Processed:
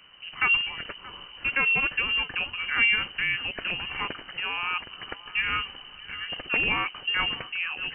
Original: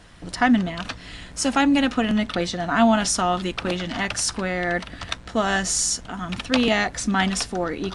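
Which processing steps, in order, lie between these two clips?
delay with a high-pass on its return 627 ms, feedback 33%, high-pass 1,600 Hz, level −14 dB
voice inversion scrambler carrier 3,000 Hz
level −5.5 dB

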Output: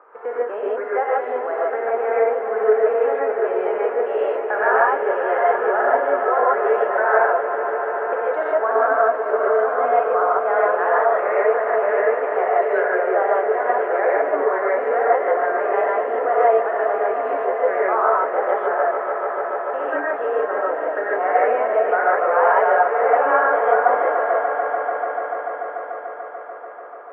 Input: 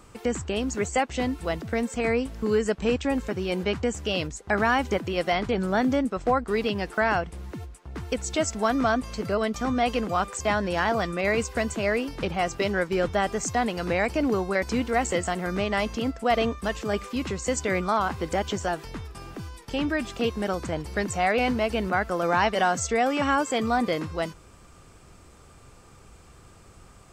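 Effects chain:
elliptic band-pass filter 440–1,600 Hz, stop band 80 dB
spectral tilt +1.5 dB per octave
in parallel at +1 dB: downward compressor, threshold −40 dBFS, peak gain reduction 19.5 dB
on the sum: high-frequency loss of the air 210 metres
on a send: echo that builds up and dies away 146 ms, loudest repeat 5, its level −13 dB
on the sum: reverb whose tail is shaped and stops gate 180 ms rising, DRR −5.5 dB
level +1.5 dB

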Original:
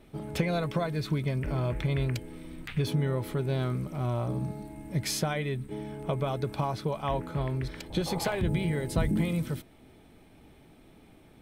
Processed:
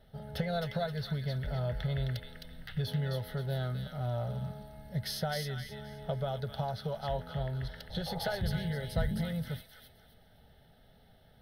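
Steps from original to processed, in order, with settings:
phaser with its sweep stopped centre 1,600 Hz, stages 8
delay with a high-pass on its return 262 ms, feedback 31%, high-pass 1,600 Hz, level −3.5 dB
level −2 dB

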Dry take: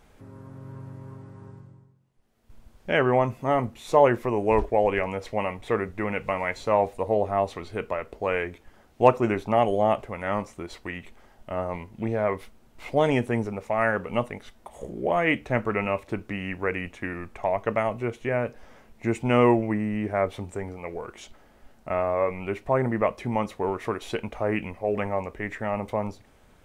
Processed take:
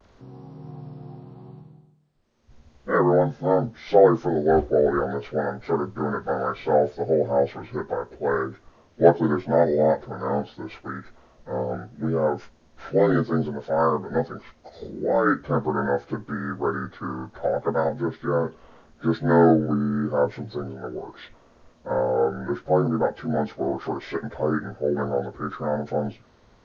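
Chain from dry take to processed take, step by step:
partials spread apart or drawn together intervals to 80%
pitch vibrato 0.75 Hz 42 cents
level +3.5 dB

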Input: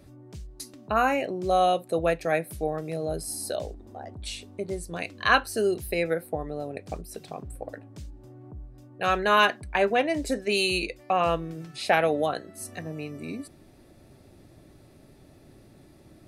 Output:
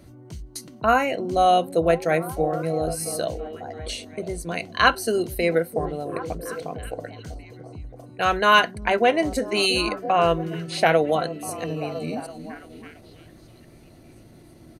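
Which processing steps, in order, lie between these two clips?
EQ curve with evenly spaced ripples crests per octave 1.9, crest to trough 6 dB
echo through a band-pass that steps 367 ms, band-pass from 210 Hz, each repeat 0.7 octaves, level −7 dB
tempo change 1.1×
level +3.5 dB

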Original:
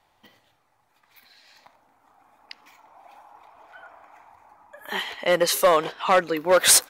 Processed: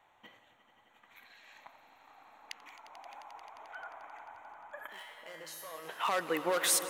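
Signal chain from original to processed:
adaptive Wiener filter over 9 samples
spectral tilt +2.5 dB per octave
in parallel at +1.5 dB: downward compressor, threshold −34 dBFS, peak gain reduction 25.5 dB
on the sum: brickwall limiter −14.5 dBFS, peak gain reduction 15 dB
0:04.87–0:05.89: tuned comb filter 160 Hz, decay 0.97 s, harmonics all, mix 90%
on a send: echo that builds up and dies away 88 ms, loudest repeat 5, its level −16 dB
on the sum: level −6.5 dB

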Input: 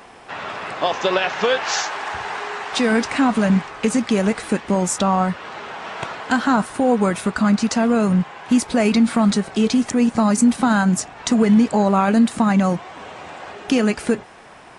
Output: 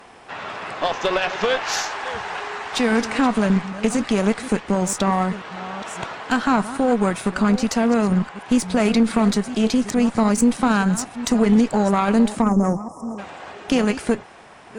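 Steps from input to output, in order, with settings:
delay that plays each chunk backwards 602 ms, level −13.5 dB
time-frequency box erased 0:12.42–0:13.18, 1,300–5,000 Hz
harmonic generator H 4 −18 dB, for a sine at −4.5 dBFS
level −2 dB

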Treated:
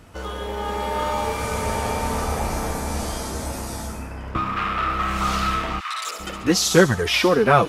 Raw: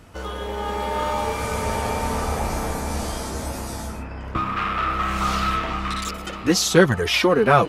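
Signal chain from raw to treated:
0:05.79–0:06.19: high-pass filter 1,400 Hz → 340 Hz 24 dB per octave
on a send: delay with a high-pass on its return 70 ms, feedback 53%, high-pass 5,100 Hz, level −5 dB

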